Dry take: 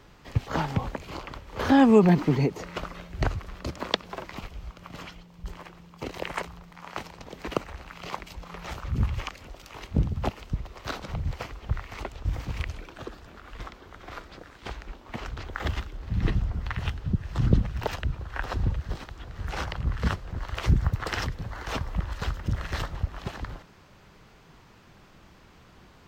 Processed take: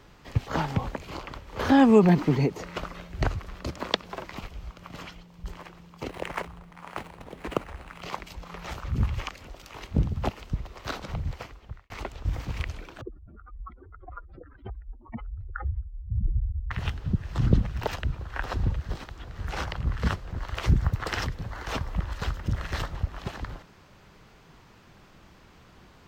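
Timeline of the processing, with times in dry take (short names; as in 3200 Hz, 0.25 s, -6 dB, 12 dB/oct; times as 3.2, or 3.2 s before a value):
6.09–8.02 median filter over 9 samples
11.15–11.9 fade out linear
13.01–16.71 spectral contrast raised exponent 3.4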